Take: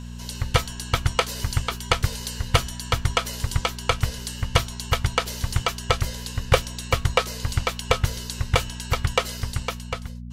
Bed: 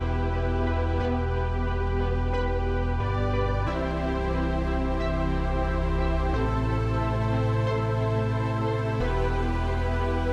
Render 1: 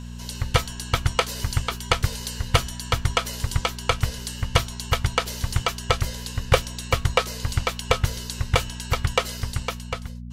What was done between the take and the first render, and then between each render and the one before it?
no processing that can be heard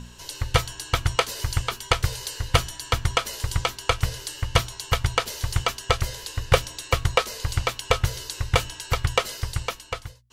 hum removal 60 Hz, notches 4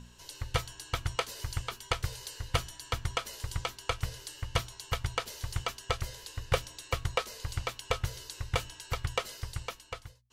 level −10 dB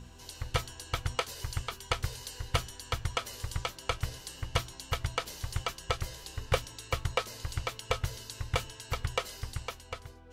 mix in bed −28.5 dB

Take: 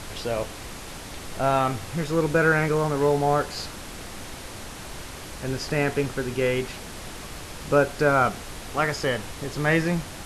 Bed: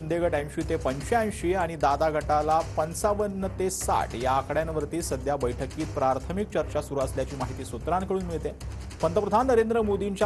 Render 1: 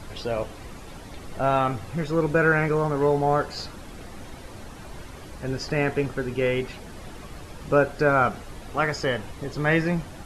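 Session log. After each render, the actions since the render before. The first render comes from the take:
broadband denoise 10 dB, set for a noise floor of −39 dBFS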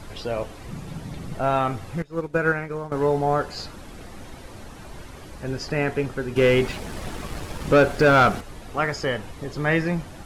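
0:00.67–0:01.35: parametric band 150 Hz +15 dB 1.1 octaves
0:02.02–0:02.92: expander for the loud parts 2.5 to 1, over −31 dBFS
0:06.36–0:08.41: leveller curve on the samples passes 2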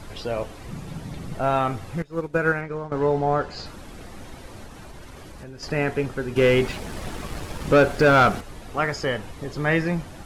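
0:02.61–0:03.66: high-frequency loss of the air 71 metres
0:04.65–0:05.63: downward compressor, threshold −36 dBFS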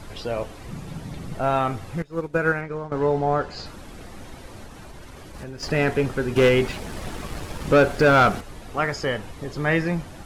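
0:05.34–0:06.49: leveller curve on the samples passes 1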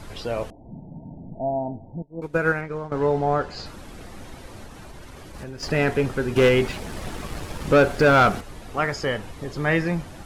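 0:00.50–0:02.22: Chebyshev low-pass with heavy ripple 940 Hz, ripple 9 dB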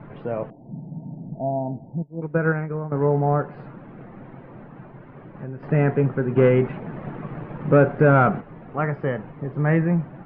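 Bessel low-pass filter 1,400 Hz, order 6
low shelf with overshoot 100 Hz −11.5 dB, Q 3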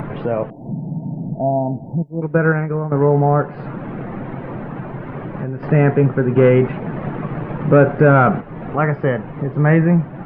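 in parallel at +2 dB: brickwall limiter −13 dBFS, peak gain reduction 7 dB
on the sum: upward compression, threshold −19 dBFS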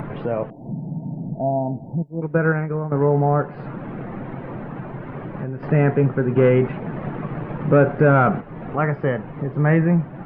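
level −3.5 dB

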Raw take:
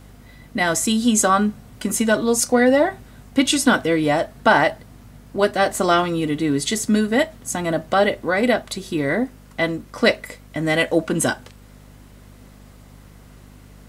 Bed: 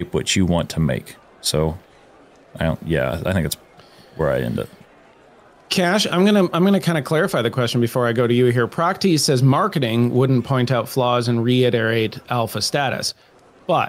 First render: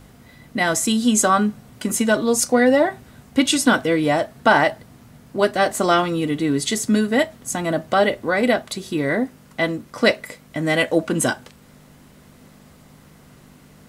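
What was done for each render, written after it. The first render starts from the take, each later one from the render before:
hum removal 50 Hz, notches 2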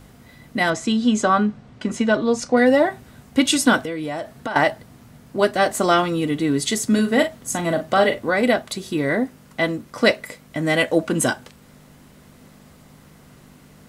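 0:00.70–0:02.57: high-frequency loss of the air 130 metres
0:03.77–0:04.56: downward compressor, threshold −24 dBFS
0:06.86–0:08.30: double-tracking delay 41 ms −8.5 dB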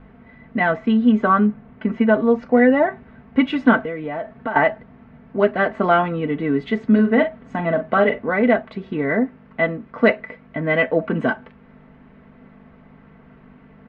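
low-pass filter 2,300 Hz 24 dB per octave
comb filter 4.5 ms, depth 50%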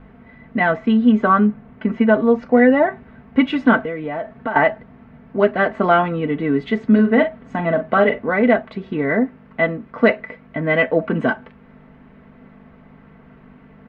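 level +1.5 dB
brickwall limiter −2 dBFS, peak gain reduction 2 dB

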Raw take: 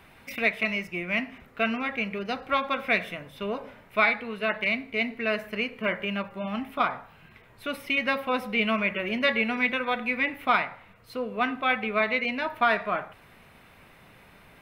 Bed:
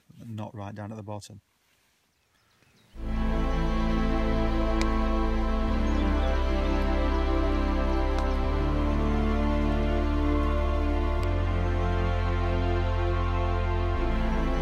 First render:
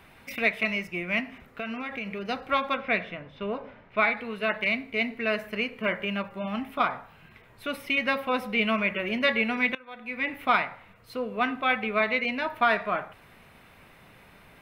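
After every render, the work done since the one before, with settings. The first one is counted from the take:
0:01.20–0:02.24: downward compressor, threshold −30 dBFS
0:02.76–0:04.17: high-frequency loss of the air 200 metres
0:09.75–0:10.33: fade in quadratic, from −21 dB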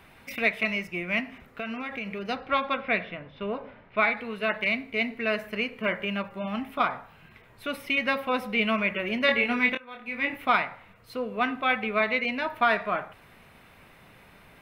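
0:02.35–0:04.03: Savitzky-Golay smoothing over 15 samples
0:09.26–0:10.37: double-tracking delay 25 ms −4 dB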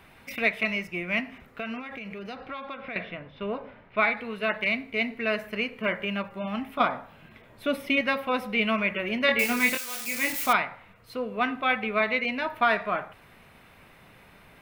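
0:01.79–0:02.96: downward compressor 4 to 1, threshold −35 dBFS
0:06.80–0:08.01: hollow resonant body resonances 260/570/3,400 Hz, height 7 dB, ringing for 20 ms
0:09.39–0:10.53: spike at every zero crossing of −23 dBFS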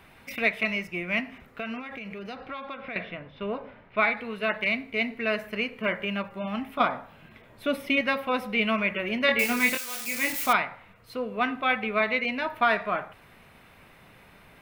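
no processing that can be heard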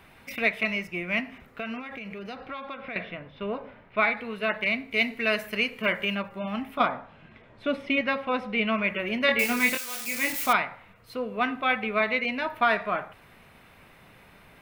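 0:04.91–0:06.15: high-shelf EQ 3,100 Hz +10.5 dB
0:06.86–0:08.84: high-frequency loss of the air 110 metres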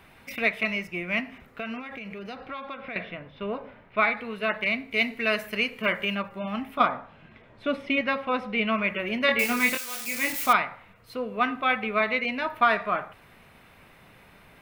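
dynamic equaliser 1,200 Hz, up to +5 dB, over −44 dBFS, Q 7.3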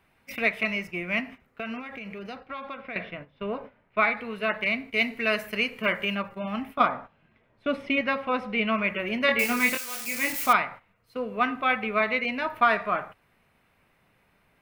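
noise gate −40 dBFS, range −12 dB
parametric band 3,600 Hz −3 dB 0.29 octaves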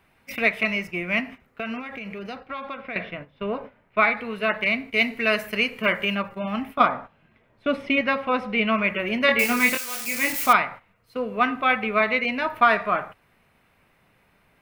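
level +3.5 dB

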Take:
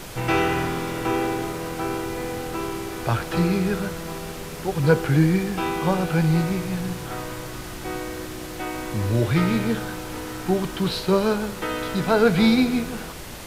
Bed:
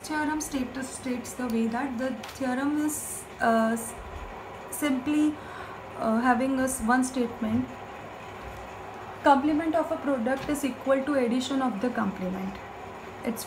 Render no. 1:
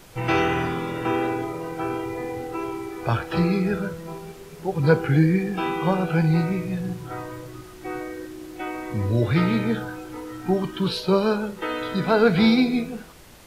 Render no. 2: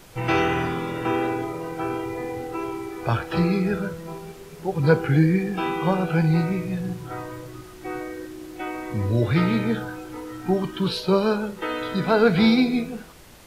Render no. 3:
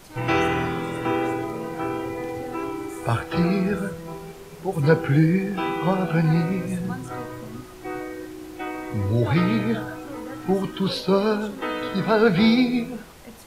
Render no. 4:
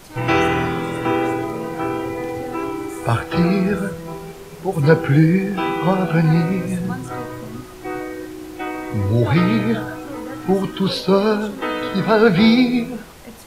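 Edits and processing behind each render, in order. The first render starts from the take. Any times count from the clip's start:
noise reduction from a noise print 11 dB
no processing that can be heard
mix in bed −13.5 dB
level +4.5 dB

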